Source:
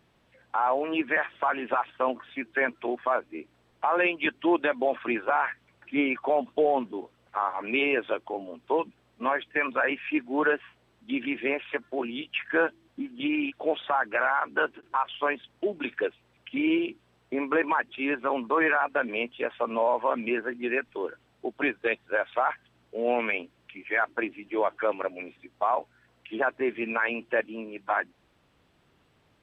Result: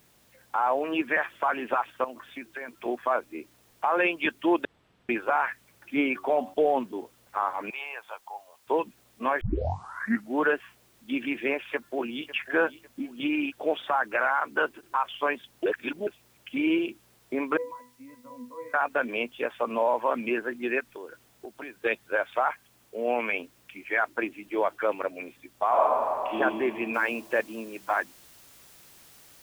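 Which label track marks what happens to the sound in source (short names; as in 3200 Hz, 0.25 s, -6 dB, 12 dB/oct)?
2.040000	2.860000	compressor, threshold -34 dBFS
4.650000	5.090000	room tone
6.110000	6.540000	de-hum 93.82 Hz, notches 15
7.700000	8.670000	ladder high-pass 760 Hz, resonance 60%
9.410000	9.410000	tape start 0.95 s
11.710000	12.300000	echo throw 0.55 s, feedback 35%, level -16 dB
15.660000	16.070000	reverse
17.570000	18.740000	octave resonator B, decay 0.32 s
20.800000	21.830000	compressor, threshold -37 dBFS
22.490000	23.310000	rippled Chebyshev low-pass 3400 Hz, ripple 3 dB
25.680000	26.380000	reverb throw, RT60 2.4 s, DRR -6.5 dB
26.940000	26.940000	noise floor step -64 dB -54 dB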